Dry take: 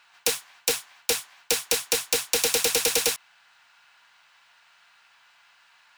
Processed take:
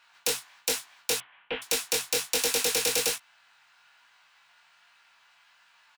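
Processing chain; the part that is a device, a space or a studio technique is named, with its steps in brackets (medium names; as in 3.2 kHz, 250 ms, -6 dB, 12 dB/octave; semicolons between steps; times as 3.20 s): double-tracked vocal (doubling 16 ms -12 dB; chorus 1.2 Hz, delay 19 ms, depth 3.9 ms); 1.20–1.62 s: Chebyshev low-pass 3.2 kHz, order 5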